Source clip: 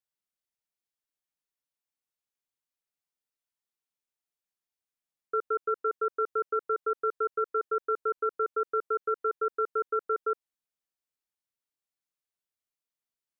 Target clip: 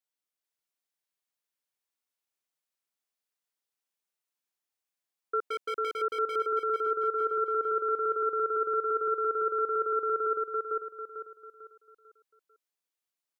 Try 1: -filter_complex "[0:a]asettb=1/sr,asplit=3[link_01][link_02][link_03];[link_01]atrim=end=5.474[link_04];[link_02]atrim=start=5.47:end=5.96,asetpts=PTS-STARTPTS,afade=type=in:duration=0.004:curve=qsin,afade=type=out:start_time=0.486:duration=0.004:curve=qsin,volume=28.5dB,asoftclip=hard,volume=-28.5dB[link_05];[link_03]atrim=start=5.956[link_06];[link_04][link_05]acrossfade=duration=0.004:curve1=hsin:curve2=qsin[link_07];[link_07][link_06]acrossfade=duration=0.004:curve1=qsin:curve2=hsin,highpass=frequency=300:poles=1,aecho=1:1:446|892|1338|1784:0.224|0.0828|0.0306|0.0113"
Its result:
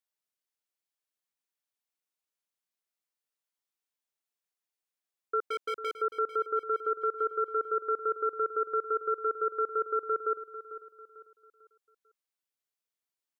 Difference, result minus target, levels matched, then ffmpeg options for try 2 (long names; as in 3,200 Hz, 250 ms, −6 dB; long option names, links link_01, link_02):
echo-to-direct −11 dB
-filter_complex "[0:a]asettb=1/sr,asplit=3[link_01][link_02][link_03];[link_01]atrim=end=5.474[link_04];[link_02]atrim=start=5.47:end=5.96,asetpts=PTS-STARTPTS,afade=type=in:duration=0.004:curve=qsin,afade=type=out:start_time=0.486:duration=0.004:curve=qsin,volume=28.5dB,asoftclip=hard,volume=-28.5dB[link_05];[link_03]atrim=start=5.956[link_06];[link_04][link_05]acrossfade=duration=0.004:curve1=hsin:curve2=qsin[link_07];[link_07][link_06]acrossfade=duration=0.004:curve1=qsin:curve2=hsin,highpass=frequency=300:poles=1,aecho=1:1:446|892|1338|1784|2230:0.794|0.294|0.109|0.0402|0.0149"